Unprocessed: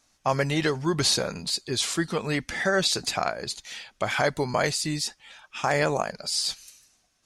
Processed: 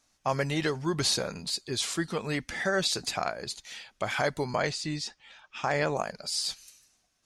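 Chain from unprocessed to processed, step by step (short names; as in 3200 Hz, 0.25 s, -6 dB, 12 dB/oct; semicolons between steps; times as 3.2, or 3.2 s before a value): 4.56–5.97 LPF 5800 Hz 12 dB/oct; gain -4 dB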